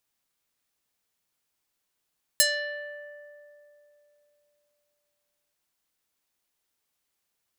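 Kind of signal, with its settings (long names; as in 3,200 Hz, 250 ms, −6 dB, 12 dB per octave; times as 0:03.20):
Karplus-Strong string D5, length 3.13 s, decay 3.22 s, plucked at 0.5, medium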